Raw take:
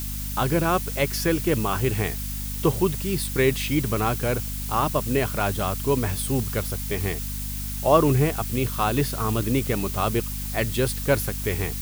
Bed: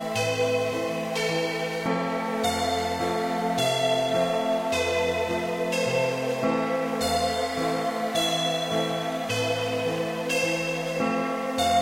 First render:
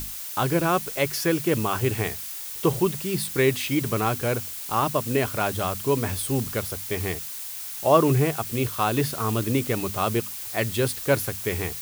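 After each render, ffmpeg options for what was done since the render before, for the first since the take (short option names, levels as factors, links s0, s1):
-af "bandreject=f=50:t=h:w=6,bandreject=f=100:t=h:w=6,bandreject=f=150:t=h:w=6,bandreject=f=200:t=h:w=6,bandreject=f=250:t=h:w=6"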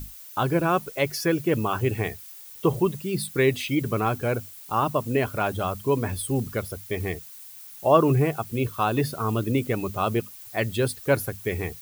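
-af "afftdn=nr=12:nf=-35"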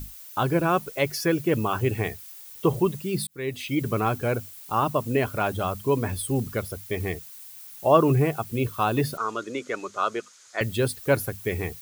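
-filter_complex "[0:a]asettb=1/sr,asplit=3[s0][s1][s2];[s0]atrim=end=9.174[s3];[s1]atrim=start=9.17:end=10.61,asetpts=PTS-STARTPTS,afade=t=in:d=0.004:c=qsin,afade=t=out:st=1.436:d=0.004:c=qsin,highpass=460,equalizer=f=770:t=q:w=4:g=-6,equalizer=f=1400:t=q:w=4:g=8,equalizer=f=2700:t=q:w=4:g=-5,equalizer=f=6600:t=q:w=4:g=7,lowpass=f=7300:w=0.5412,lowpass=f=7300:w=1.3066[s4];[s2]atrim=start=10.606[s5];[s3][s4]acrossfade=d=0.004:c1=hsin:c2=qsin[s6];[s6][s5]acrossfade=d=0.004:c1=qsin:c2=hsin,asplit=2[s7][s8];[s7]atrim=end=3.27,asetpts=PTS-STARTPTS,afade=t=out:st=3.266:d=0.004:c=hsin[s9];[s8]atrim=start=3.27,asetpts=PTS-STARTPTS,afade=t=in:d=0.57[s10];[s9][s10]concat=n=2:v=0:a=1"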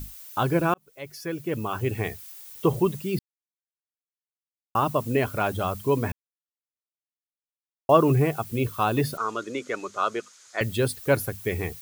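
-filter_complex "[0:a]asplit=6[s0][s1][s2][s3][s4][s5];[s0]atrim=end=0.74,asetpts=PTS-STARTPTS,afade=t=out:st=0.736:d=0.004:c=hsin[s6];[s1]atrim=start=0.74:end=3.19,asetpts=PTS-STARTPTS,afade=t=in:d=1.5,afade=t=out:st=2.446:d=0.004:c=hsin[s7];[s2]atrim=start=3.19:end=4.75,asetpts=PTS-STARTPTS,volume=0[s8];[s3]atrim=start=4.75:end=6.12,asetpts=PTS-STARTPTS,afade=t=in:d=0.004:c=hsin,afade=t=out:st=1.366:d=0.004:c=hsin[s9];[s4]atrim=start=6.12:end=7.89,asetpts=PTS-STARTPTS,volume=0[s10];[s5]atrim=start=7.89,asetpts=PTS-STARTPTS,afade=t=in:d=0.004:c=hsin[s11];[s6][s7][s8][s9][s10][s11]concat=n=6:v=0:a=1"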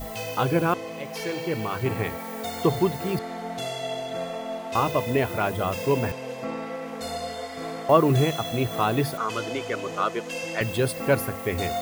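-filter_complex "[1:a]volume=0.422[s0];[0:a][s0]amix=inputs=2:normalize=0"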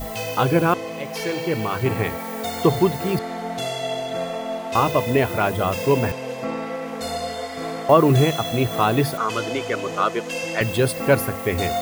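-af "volume=1.68,alimiter=limit=0.794:level=0:latency=1"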